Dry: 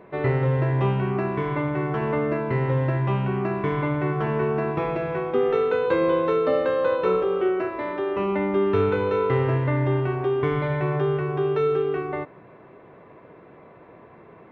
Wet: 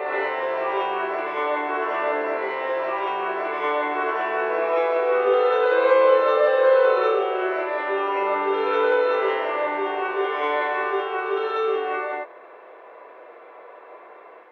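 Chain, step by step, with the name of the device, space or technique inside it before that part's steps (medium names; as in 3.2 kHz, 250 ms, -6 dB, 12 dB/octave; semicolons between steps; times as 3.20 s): ghost voice (reverse; reverberation RT60 1.5 s, pre-delay 3 ms, DRR -6 dB; reverse; high-pass 490 Hz 24 dB/octave)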